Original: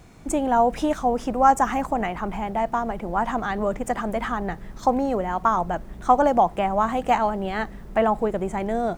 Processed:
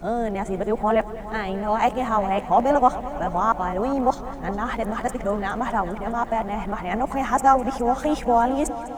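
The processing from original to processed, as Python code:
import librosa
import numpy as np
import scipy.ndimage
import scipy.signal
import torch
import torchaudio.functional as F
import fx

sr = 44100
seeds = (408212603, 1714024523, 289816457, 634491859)

y = np.flip(x).copy()
y = fx.echo_heads(y, sr, ms=204, heads='first and second', feedback_pct=67, wet_db=-18)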